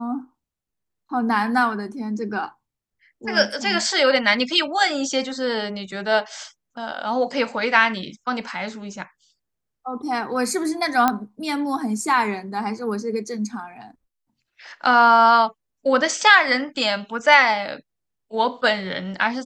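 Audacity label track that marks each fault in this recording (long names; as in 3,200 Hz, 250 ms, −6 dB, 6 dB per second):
11.080000	11.080000	click −5 dBFS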